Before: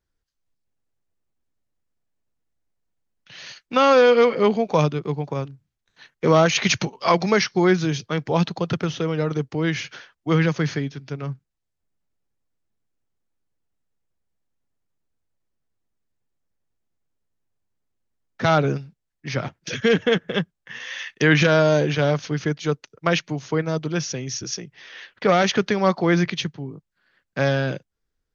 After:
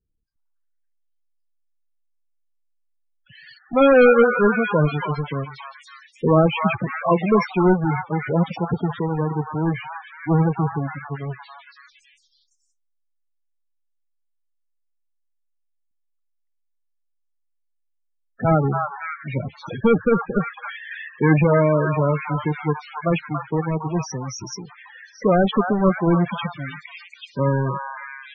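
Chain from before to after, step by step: square wave that keeps the level; repeats whose band climbs or falls 280 ms, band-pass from 1.1 kHz, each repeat 0.7 oct, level -1.5 dB; loudest bins only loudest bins 16; trim -3 dB

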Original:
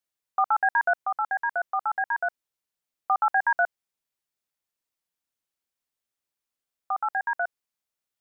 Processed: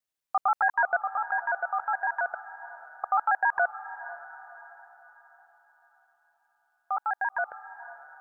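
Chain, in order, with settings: time reversed locally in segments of 69 ms; echo that smears into a reverb 533 ms, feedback 43%, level -14.5 dB; trim -1.5 dB

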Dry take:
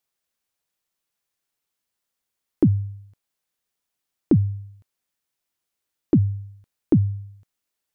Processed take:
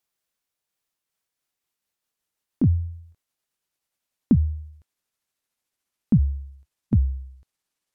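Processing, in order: pitch bend over the whole clip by -8 st starting unshifted

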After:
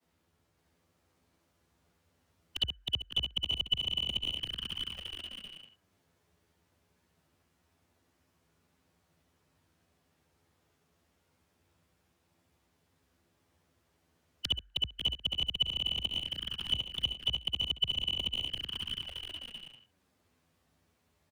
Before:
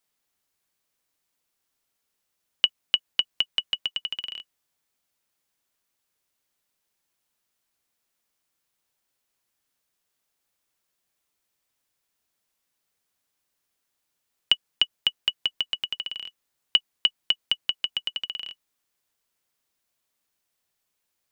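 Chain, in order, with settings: short-time spectra conjugated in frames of 137 ms; Chebyshev shaper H 2 -24 dB, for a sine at -8 dBFS; frequency shift +46 Hz; in parallel at -4 dB: bit crusher 5-bit; on the sum: tilt EQ -4 dB/octave; compression 3:1, threshold -31 dBFS, peak gain reduction 9.5 dB; bouncing-ball echo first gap 560 ms, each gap 0.6×, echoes 5; touch-sensitive flanger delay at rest 12 ms, full sweep at -33.5 dBFS; on a send at -13 dB: Butterworth band-pass 1.6 kHz, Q 5.5 + reverberation RT60 1.0 s, pre-delay 4 ms; on the sum: three bands compressed up and down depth 40%; trim +2.5 dB

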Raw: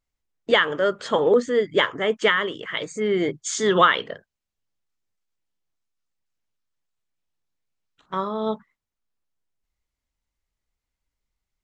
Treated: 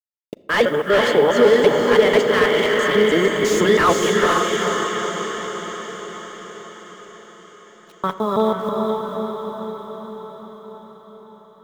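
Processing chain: time reversed locally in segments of 164 ms; in parallel at 0 dB: peak limiter -16.5 dBFS, peak gain reduction 11.5 dB; on the sum: word length cut 8-bit, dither none; echo that smears into a reverb 465 ms, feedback 62%, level -3 dB; on a send at -10 dB: reverberation RT60 1.7 s, pre-delay 5 ms; on the sum: slew-rate limiter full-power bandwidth 280 Hz

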